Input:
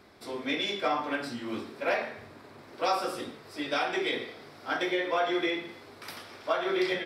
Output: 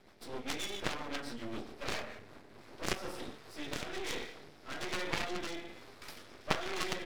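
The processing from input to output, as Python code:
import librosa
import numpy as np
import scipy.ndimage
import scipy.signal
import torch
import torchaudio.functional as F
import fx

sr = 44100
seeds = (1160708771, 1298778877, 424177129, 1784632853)

y = fx.cheby_harmonics(x, sr, harmonics=(3,), levels_db=(-7,), full_scale_db=-14.5)
y = fx.rotary_switch(y, sr, hz=7.5, then_hz=1.2, switch_at_s=1.83)
y = np.maximum(y, 0.0)
y = y * librosa.db_to_amplitude(10.5)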